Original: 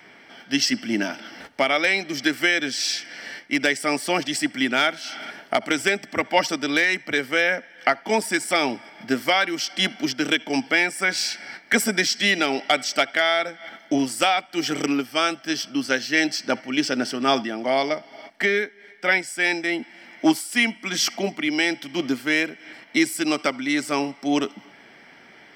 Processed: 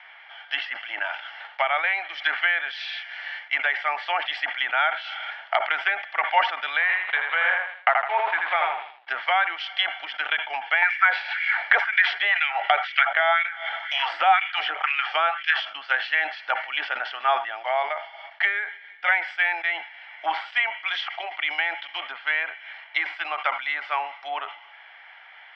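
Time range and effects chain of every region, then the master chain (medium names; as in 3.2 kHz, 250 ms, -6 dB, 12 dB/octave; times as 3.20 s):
6.81–9.07 s: send-on-delta sampling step -25.5 dBFS + low-pass 4.6 kHz 24 dB/octave + feedback delay 80 ms, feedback 33%, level -3 dB
10.82–15.60 s: LFO high-pass sine 2 Hz 310–2400 Hz + three bands compressed up and down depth 70%
whole clip: low-pass that closes with the level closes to 1.7 kHz, closed at -18 dBFS; elliptic band-pass 770–3400 Hz, stop band 60 dB; decay stretcher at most 110 dB/s; trim +3 dB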